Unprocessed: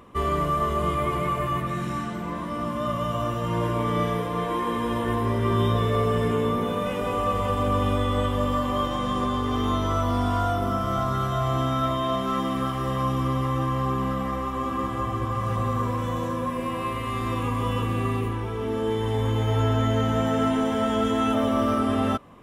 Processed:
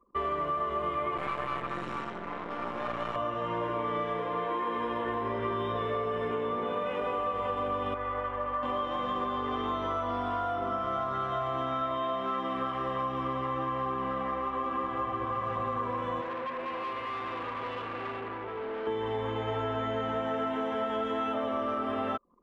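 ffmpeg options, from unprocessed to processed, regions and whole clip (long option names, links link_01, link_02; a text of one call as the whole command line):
ffmpeg -i in.wav -filter_complex "[0:a]asettb=1/sr,asplit=3[link_01][link_02][link_03];[link_01]atrim=end=1.174[link_04];[link_02]atrim=start=1.17:end=3.16,asetpts=PTS-STARTPTS,afade=type=in:duration=0.004:curve=qsin,afade=type=out:start_time=1.986:duration=0.004:curve=qsin,lowpass=frequency=10000:width=0.5412,lowpass=frequency=10000:width=1.3066,bass=frequency=250:gain=4,treble=frequency=4000:gain=10,aeval=exprs='max(val(0),0)':channel_layout=same[link_05];[link_03]atrim=start=3.156[link_06];[link_04][link_05]acrossfade=duration=0.004:curve1=hsin:curve2=qsin[link_07];[link_07][link_06]acrossfade=duration=0.004:curve1=qsin:curve2=hsin,asettb=1/sr,asplit=3[link_08][link_09][link_10];[link_08]atrim=end=7.944[link_11];[link_09]atrim=start=7.94:end=8.63,asetpts=PTS-STARTPTS,afade=type=in:duration=0.004:curve=qsin,afade=type=out:start_time=0.686:duration=0.004:curve=qsin,lowpass=frequency=2300:width=0.5412,lowpass=frequency=2300:width=1.3066,equalizer=frequency=230:width_type=o:width=2.8:gain=-11,acrusher=bits=7:mode=log:mix=0:aa=0.000001[link_12];[link_10]atrim=start=8.626[link_13];[link_11][link_12]acrossfade=duration=0.004:curve1=hsin:curve2=qsin[link_14];[link_14][link_13]acrossfade=duration=0.004:curve1=qsin:curve2=hsin,asettb=1/sr,asplit=3[link_15][link_16][link_17];[link_15]atrim=end=16.214[link_18];[link_16]atrim=start=16.21:end=18.87,asetpts=PTS-STARTPTS,afade=type=in:duration=0.004:curve=qsin,afade=type=out:start_time=2.656:duration=0.004:curve=qsin,lowshelf=frequency=140:gain=-7,bandreject=frequency=50:width_type=h:width=6,bandreject=frequency=100:width_type=h:width=6,bandreject=frequency=150:width_type=h:width=6,bandreject=frequency=200:width_type=h:width=6,bandreject=frequency=250:width_type=h:width=6,bandreject=frequency=300:width_type=h:width=6,bandreject=frequency=350:width_type=h:width=6,asoftclip=type=hard:threshold=-31.5dB[link_19];[link_17]atrim=start=18.866[link_20];[link_18][link_19]acrossfade=duration=0.004:curve1=hsin:curve2=qsin[link_21];[link_21][link_20]acrossfade=duration=0.004:curve1=qsin:curve2=hsin,anlmdn=0.398,acrossover=split=320 3400:gain=0.2 1 0.0891[link_22][link_23][link_24];[link_22][link_23][link_24]amix=inputs=3:normalize=0,acompressor=threshold=-28dB:ratio=6" out.wav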